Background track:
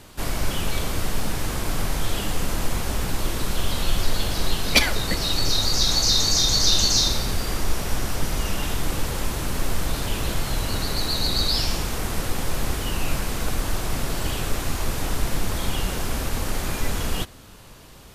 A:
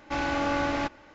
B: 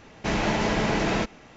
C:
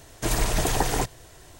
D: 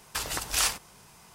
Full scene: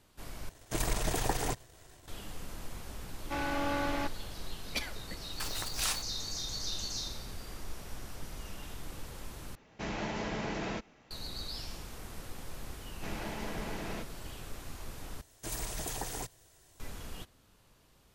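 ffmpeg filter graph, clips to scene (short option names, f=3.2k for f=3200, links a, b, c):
-filter_complex "[3:a]asplit=2[a][b];[2:a]asplit=2[c][d];[0:a]volume=-18.5dB[e];[a]aeval=exprs='if(lt(val(0),0),0.447*val(0),val(0))':c=same[f];[4:a]acrusher=bits=7:dc=4:mix=0:aa=0.000001[g];[b]highshelf=f=4.5k:g=8.5[h];[e]asplit=4[i][j][k][l];[i]atrim=end=0.494[m];[f]atrim=end=1.59,asetpts=PTS-STARTPTS,volume=-5.5dB[n];[j]atrim=start=2.076:end=9.554[o];[c]atrim=end=1.56,asetpts=PTS-STARTPTS,volume=-12dB[p];[k]atrim=start=11.106:end=15.214[q];[h]atrim=end=1.59,asetpts=PTS-STARTPTS,volume=-16dB[r];[l]atrim=start=16.796[s];[1:a]atrim=end=1.14,asetpts=PTS-STARTPTS,volume=-6dB,afade=t=in:d=0.004:c=hsin,afade=t=out:st=1.136:d=0.004:c=hsin,adelay=3200[t];[g]atrim=end=1.34,asetpts=PTS-STARTPTS,volume=-8dB,afade=t=in:d=0.004:c=hsin,afade=t=out:st=1.336:d=0.004:c=hsin,adelay=231525S[u];[d]atrim=end=1.56,asetpts=PTS-STARTPTS,volume=-16dB,afade=t=in:d=0.004:c=hsin,afade=t=out:st=1.556:d=0.004:c=hsin,adelay=12780[v];[m][n]acrossfade=d=0.004:c1=hsin:c2=hsin[w];[w][o]acrossfade=d=0.004:c1=hsin:c2=hsin[x];[x][p]acrossfade=d=0.004:c1=hsin:c2=hsin[y];[y][q]acrossfade=d=0.004:c1=hsin:c2=hsin[z];[z][r]acrossfade=d=0.004:c1=hsin:c2=hsin[aa];[aa][s]acrossfade=d=0.004:c1=hsin:c2=hsin[ab];[ab][t][u][v]amix=inputs=4:normalize=0"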